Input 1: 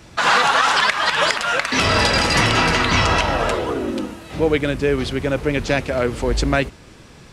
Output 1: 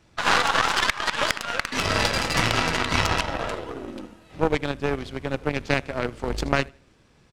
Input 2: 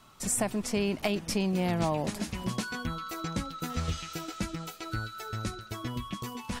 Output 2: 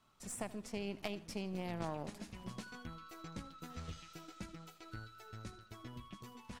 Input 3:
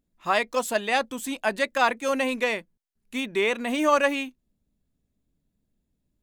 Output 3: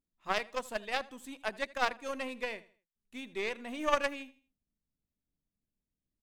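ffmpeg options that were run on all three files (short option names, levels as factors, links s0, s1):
-af "aeval=exprs='if(lt(val(0),0),0.708*val(0),val(0))':c=same,aecho=1:1:80|160|240:0.141|0.0452|0.0145,aeval=exprs='1*(cos(1*acos(clip(val(0)/1,-1,1)))-cos(1*PI/2))+0.112*(cos(7*acos(clip(val(0)/1,-1,1)))-cos(7*PI/2))':c=same,highshelf=f=7100:g=-4.5"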